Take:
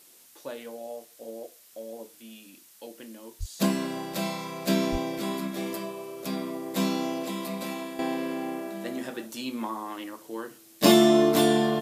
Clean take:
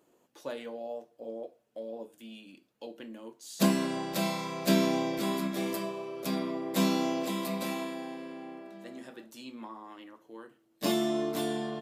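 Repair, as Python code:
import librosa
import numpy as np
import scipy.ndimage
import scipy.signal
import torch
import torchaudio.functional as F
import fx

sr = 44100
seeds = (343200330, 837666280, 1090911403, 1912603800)

y = fx.highpass(x, sr, hz=140.0, slope=24, at=(3.39, 3.51), fade=0.02)
y = fx.highpass(y, sr, hz=140.0, slope=24, at=(4.91, 5.03), fade=0.02)
y = fx.noise_reduce(y, sr, print_start_s=0.0, print_end_s=0.5, reduce_db=11.0)
y = fx.fix_level(y, sr, at_s=7.99, step_db=-11.0)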